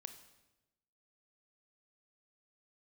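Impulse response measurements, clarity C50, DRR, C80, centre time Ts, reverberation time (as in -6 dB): 10.5 dB, 8.5 dB, 13.0 dB, 11 ms, 1.0 s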